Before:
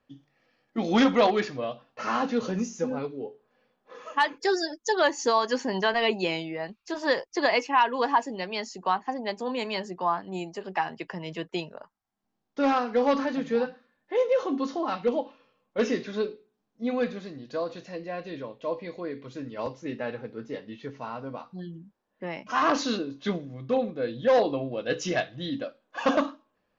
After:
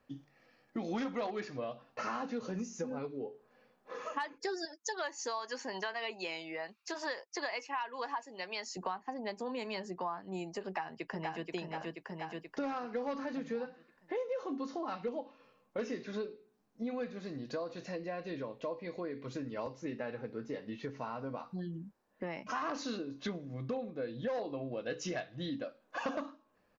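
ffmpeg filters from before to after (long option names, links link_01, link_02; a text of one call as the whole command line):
ffmpeg -i in.wav -filter_complex "[0:a]asettb=1/sr,asplit=3[link_01][link_02][link_03];[link_01]atrim=end=4.654[link_04];[link_02]atrim=start=4.65:end=8.77,asetpts=PTS-STARTPTS,afade=type=in:duration=0.004:curve=qsin,afade=type=out:start_time=4.116:duration=0.004:curve=qsin,highpass=frequency=900:poles=1[link_05];[link_03]atrim=start=8.766[link_06];[link_04][link_05]acrossfade=duration=0.004:curve1=hsin:curve2=qsin[link_07];[link_07][link_06]acrossfade=duration=0.004:curve1=qsin:curve2=hsin,asplit=2[link_08][link_09];[link_09]afade=type=in:start_time=10.64:duration=0.01,afade=type=out:start_time=11.47:duration=0.01,aecho=0:1:480|960|1440|1920|2400|2880:0.630957|0.315479|0.157739|0.0788697|0.0394348|0.0197174[link_10];[link_08][link_10]amix=inputs=2:normalize=0,equalizer=frequency=3300:width=3.6:gain=-5,acompressor=threshold=-40dB:ratio=4,volume=2.5dB" out.wav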